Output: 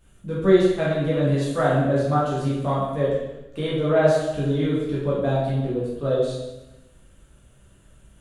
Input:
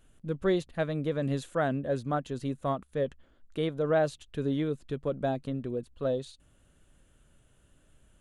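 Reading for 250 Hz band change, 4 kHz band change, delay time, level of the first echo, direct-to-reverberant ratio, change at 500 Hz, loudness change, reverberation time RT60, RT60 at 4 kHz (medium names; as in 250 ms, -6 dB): +8.5 dB, +8.5 dB, no echo, no echo, -8.0 dB, +9.5 dB, +9.0 dB, 1.0 s, 0.95 s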